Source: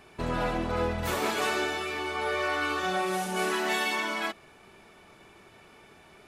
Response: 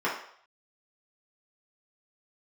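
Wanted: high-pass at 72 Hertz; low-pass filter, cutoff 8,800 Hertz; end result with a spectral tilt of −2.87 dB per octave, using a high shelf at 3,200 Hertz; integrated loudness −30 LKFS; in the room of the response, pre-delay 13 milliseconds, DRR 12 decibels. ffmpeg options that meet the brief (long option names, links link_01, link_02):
-filter_complex "[0:a]highpass=72,lowpass=8800,highshelf=frequency=3200:gain=-7,asplit=2[link_01][link_02];[1:a]atrim=start_sample=2205,adelay=13[link_03];[link_02][link_03]afir=irnorm=-1:irlink=0,volume=-24dB[link_04];[link_01][link_04]amix=inputs=2:normalize=0"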